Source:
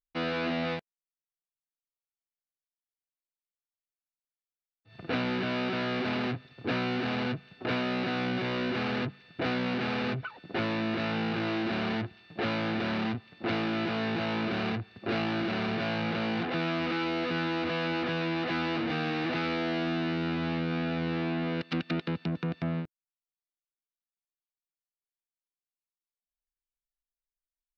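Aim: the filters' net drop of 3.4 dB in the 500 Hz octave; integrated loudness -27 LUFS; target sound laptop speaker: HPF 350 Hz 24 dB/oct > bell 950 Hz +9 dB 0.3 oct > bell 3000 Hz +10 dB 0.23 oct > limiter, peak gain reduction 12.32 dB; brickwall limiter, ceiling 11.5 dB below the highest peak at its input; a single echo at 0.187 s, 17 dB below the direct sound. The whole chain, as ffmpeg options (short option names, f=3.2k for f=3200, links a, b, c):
-af "equalizer=f=500:t=o:g=-4,alimiter=level_in=5.5dB:limit=-24dB:level=0:latency=1,volume=-5.5dB,highpass=f=350:w=0.5412,highpass=f=350:w=1.3066,equalizer=f=950:t=o:w=0.3:g=9,equalizer=f=3k:t=o:w=0.23:g=10,aecho=1:1:187:0.141,volume=19.5dB,alimiter=limit=-18.5dB:level=0:latency=1"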